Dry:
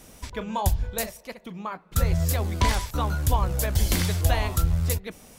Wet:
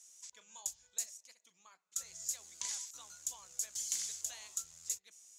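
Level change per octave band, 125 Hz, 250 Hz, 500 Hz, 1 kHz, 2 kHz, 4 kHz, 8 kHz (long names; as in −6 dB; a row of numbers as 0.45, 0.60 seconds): below −40 dB, below −40 dB, −35.0 dB, −30.0 dB, −23.0 dB, −13.0 dB, −2.5 dB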